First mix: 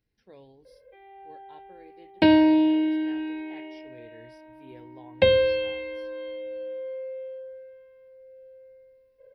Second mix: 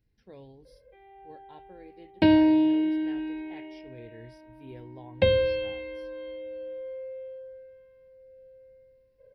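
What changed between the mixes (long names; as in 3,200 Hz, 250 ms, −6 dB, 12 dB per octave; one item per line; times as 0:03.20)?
background −4.5 dB
master: add low-shelf EQ 210 Hz +9.5 dB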